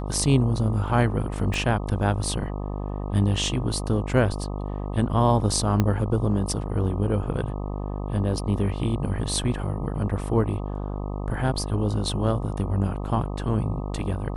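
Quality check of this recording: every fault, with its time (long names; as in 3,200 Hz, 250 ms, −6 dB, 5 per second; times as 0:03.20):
mains buzz 50 Hz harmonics 25 −30 dBFS
0:01.54: click
0:05.80: click −9 dBFS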